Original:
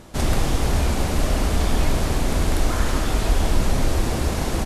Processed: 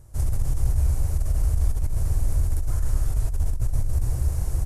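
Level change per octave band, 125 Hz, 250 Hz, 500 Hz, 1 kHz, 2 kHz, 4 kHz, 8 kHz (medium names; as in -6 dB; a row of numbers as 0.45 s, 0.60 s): -1.0 dB, -16.5 dB, -17.5 dB, -18.5 dB, -21.0 dB, -21.0 dB, -9.0 dB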